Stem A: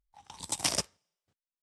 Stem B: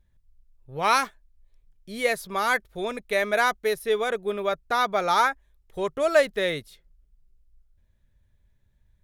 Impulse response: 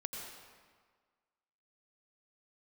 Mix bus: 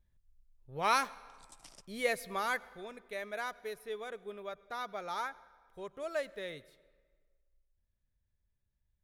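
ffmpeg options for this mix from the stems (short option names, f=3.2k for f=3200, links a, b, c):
-filter_complex "[0:a]acompressor=threshold=-41dB:ratio=2,adelay=1000,volume=-18dB[a];[1:a]volume=-8.5dB,afade=t=out:st=2.28:d=0.53:silence=0.354813,asplit=2[b][c];[c]volume=-16dB[d];[2:a]atrim=start_sample=2205[e];[d][e]afir=irnorm=-1:irlink=0[f];[a][b][f]amix=inputs=3:normalize=0"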